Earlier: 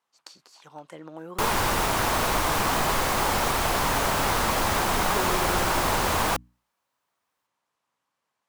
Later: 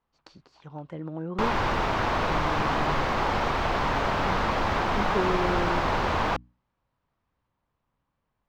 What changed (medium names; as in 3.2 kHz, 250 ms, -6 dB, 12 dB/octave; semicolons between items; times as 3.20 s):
speech: remove frequency weighting A; master: add distance through air 220 m